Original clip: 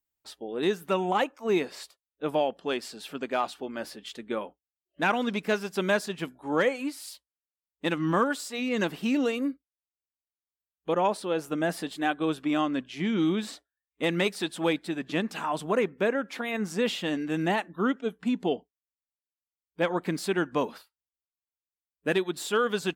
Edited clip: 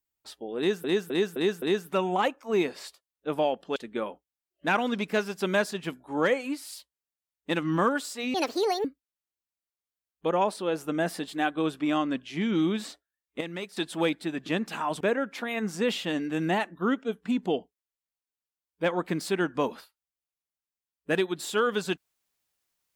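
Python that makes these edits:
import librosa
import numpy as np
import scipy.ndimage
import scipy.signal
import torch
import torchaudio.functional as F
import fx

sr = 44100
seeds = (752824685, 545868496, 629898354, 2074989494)

y = fx.edit(x, sr, fx.repeat(start_s=0.58, length_s=0.26, count=5),
    fx.cut(start_s=2.72, length_s=1.39),
    fx.speed_span(start_s=8.69, length_s=0.79, speed=1.56),
    fx.clip_gain(start_s=14.04, length_s=0.36, db=-10.0),
    fx.cut(start_s=15.64, length_s=0.34), tone=tone)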